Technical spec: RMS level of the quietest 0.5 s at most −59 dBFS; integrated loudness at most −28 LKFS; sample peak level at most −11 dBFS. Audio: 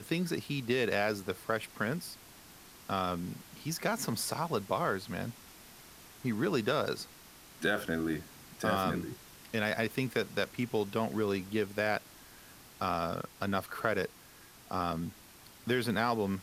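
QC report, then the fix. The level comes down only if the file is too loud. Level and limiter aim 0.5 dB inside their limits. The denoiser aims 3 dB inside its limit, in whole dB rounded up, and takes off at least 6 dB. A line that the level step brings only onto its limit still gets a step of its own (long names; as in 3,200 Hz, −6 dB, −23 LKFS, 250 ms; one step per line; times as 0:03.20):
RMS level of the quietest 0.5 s −55 dBFS: out of spec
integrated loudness −34.0 LKFS: in spec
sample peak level −13.5 dBFS: in spec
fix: broadband denoise 7 dB, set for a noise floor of −55 dBFS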